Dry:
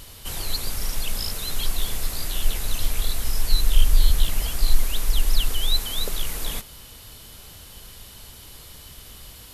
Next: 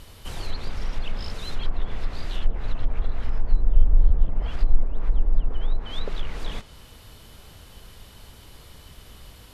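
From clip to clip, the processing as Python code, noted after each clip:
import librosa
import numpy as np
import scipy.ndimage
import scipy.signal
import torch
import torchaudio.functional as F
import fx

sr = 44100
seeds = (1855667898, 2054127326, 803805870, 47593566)

y = fx.env_lowpass_down(x, sr, base_hz=740.0, full_db=-13.0)
y = fx.high_shelf(y, sr, hz=3600.0, db=-10.5)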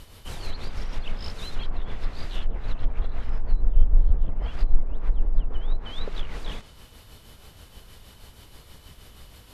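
y = x * (1.0 - 0.43 / 2.0 + 0.43 / 2.0 * np.cos(2.0 * np.pi * 6.3 * (np.arange(len(x)) / sr)))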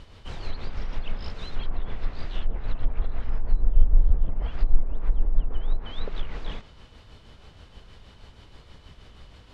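y = fx.air_absorb(x, sr, metres=120.0)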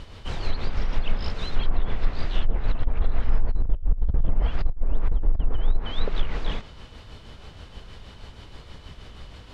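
y = fx.over_compress(x, sr, threshold_db=-19.0, ratio=-0.5)
y = F.gain(torch.from_numpy(y), 3.5).numpy()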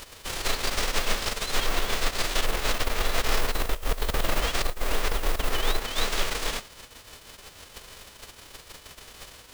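y = fx.envelope_flatten(x, sr, power=0.3)
y = 10.0 ** (-5.5 / 20.0) * np.tanh(y / 10.0 ** (-5.5 / 20.0))
y = F.gain(torch.from_numpy(y), -5.5).numpy()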